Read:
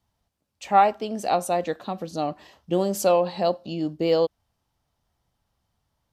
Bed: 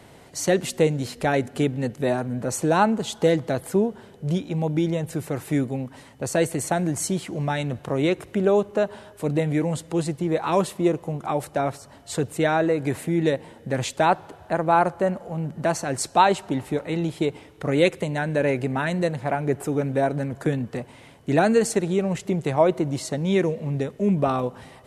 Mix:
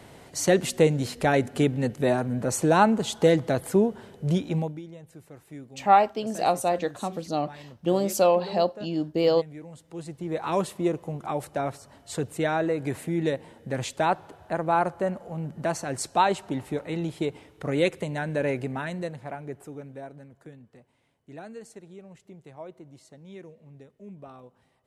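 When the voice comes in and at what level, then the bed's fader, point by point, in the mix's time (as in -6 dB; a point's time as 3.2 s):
5.15 s, -0.5 dB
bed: 4.58 s 0 dB
4.82 s -19 dB
9.72 s -19 dB
10.44 s -4.5 dB
18.54 s -4.5 dB
20.52 s -23 dB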